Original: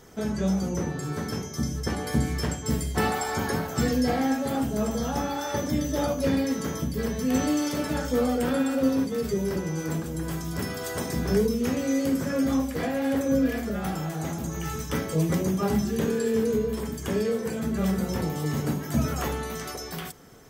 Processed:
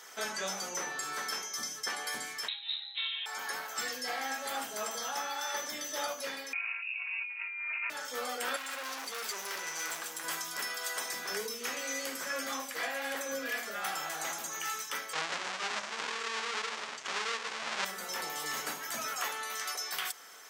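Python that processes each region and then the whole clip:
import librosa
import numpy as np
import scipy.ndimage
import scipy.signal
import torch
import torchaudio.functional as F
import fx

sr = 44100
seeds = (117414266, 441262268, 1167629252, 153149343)

y = fx.chain(x, sr, fx.highpass(hz=210.0, slope=6),
    fx.freq_invert(carrier_hz=4000), at=(2.48, 3.26))
y = fx.chain(y, sr, fx.over_compress(threshold_db=-30.0, ratio=-1.0),
    fx.freq_invert(carrier_hz=2700), at=(6.53, 7.9))
y = fx.chain(y, sr, fx.low_shelf(hz=490.0, db=-6.5),
    fx.clip_hard(threshold_db=-35.0), at=(8.56, 10.24))
y = fx.chain(y, sr, fx.halfwave_hold(),
    fx.lowpass(hz=7200.0, slope=24), at=(15.13, 17.85))
y = scipy.signal.sosfilt(scipy.signal.butter(2, 1200.0, 'highpass', fs=sr, output='sos'), y)
y = fx.high_shelf(y, sr, hz=10000.0, db=-4.0)
y = fx.rider(y, sr, range_db=10, speed_s=0.5)
y = F.gain(torch.from_numpy(y), -2.0).numpy()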